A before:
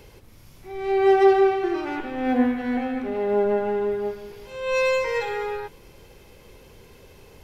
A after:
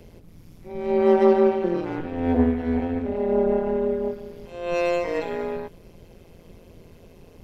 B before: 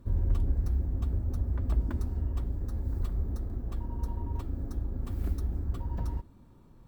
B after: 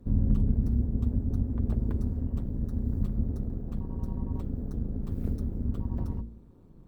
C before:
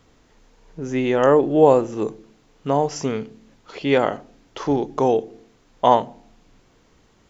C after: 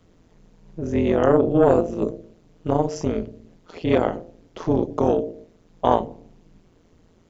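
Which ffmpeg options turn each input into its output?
-filter_complex "[0:a]bandreject=f=56.79:t=h:w=4,bandreject=f=113.58:t=h:w=4,bandreject=f=170.37:t=h:w=4,bandreject=f=227.16:t=h:w=4,bandreject=f=283.95:t=h:w=4,bandreject=f=340.74:t=h:w=4,bandreject=f=397.53:t=h:w=4,bandreject=f=454.32:t=h:w=4,bandreject=f=511.11:t=h:w=4,bandreject=f=567.9:t=h:w=4,acrossover=split=550[a][b];[a]aeval=exprs='0.501*sin(PI/2*1.78*val(0)/0.501)':c=same[c];[c][b]amix=inputs=2:normalize=0,tremolo=f=170:d=0.889,volume=-2.5dB"

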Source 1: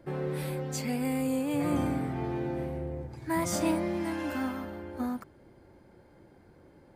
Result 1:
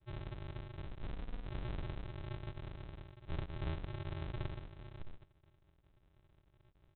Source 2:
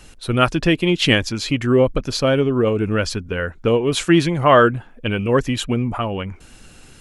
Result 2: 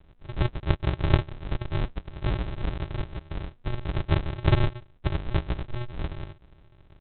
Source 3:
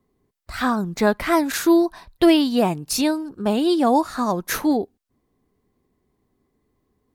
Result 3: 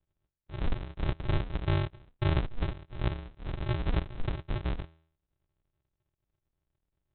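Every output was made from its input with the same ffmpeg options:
-af "tiltshelf=f=900:g=-7.5,bandreject=f=404.3:t=h:w=4,bandreject=f=808.6:t=h:w=4,bandreject=f=1.2129k:t=h:w=4,bandreject=f=1.6172k:t=h:w=4,aresample=8000,acrusher=samples=33:mix=1:aa=0.000001,aresample=44100,volume=-7dB"

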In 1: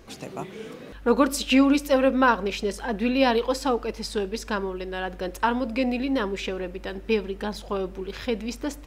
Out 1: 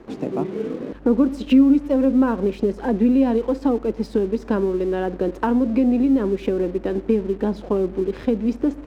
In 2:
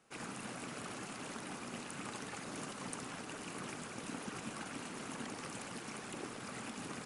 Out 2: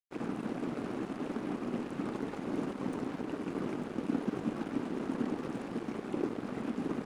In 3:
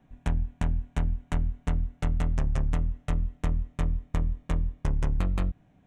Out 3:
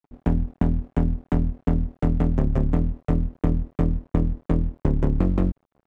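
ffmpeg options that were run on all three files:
-filter_complex "[0:a]lowpass=f=1.4k:p=1,equalizer=f=310:t=o:w=2:g=14,acrossover=split=180[a][b];[a]crystalizer=i=5.5:c=0[c];[b]acompressor=threshold=-21dB:ratio=6[d];[c][d]amix=inputs=2:normalize=0,aeval=exprs='sgn(val(0))*max(abs(val(0))-0.00473,0)':c=same,volume=2.5dB"

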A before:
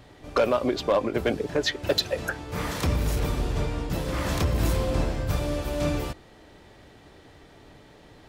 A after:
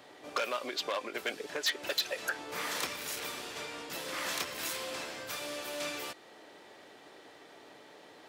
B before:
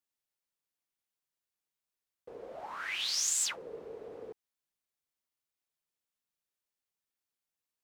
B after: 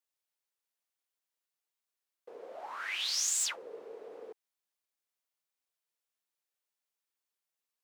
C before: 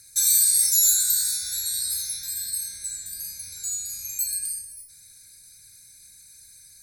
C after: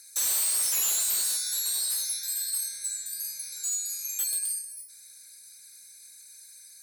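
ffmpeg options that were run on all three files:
-filter_complex "[0:a]acrossover=split=1400[a][b];[a]acompressor=threshold=-35dB:ratio=6[c];[c][b]amix=inputs=2:normalize=0,asoftclip=type=hard:threshold=-24.5dB,highpass=370"

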